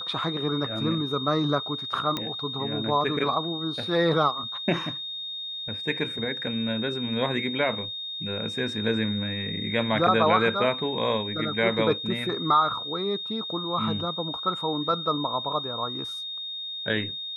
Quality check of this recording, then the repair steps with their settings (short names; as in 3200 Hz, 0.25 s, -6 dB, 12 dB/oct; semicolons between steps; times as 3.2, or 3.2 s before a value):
tone 3700 Hz -32 dBFS
2.17 pop -14 dBFS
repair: de-click; notch 3700 Hz, Q 30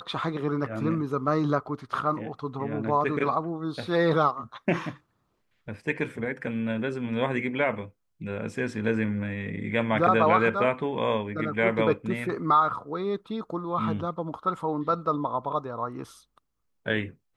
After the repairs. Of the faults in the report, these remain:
none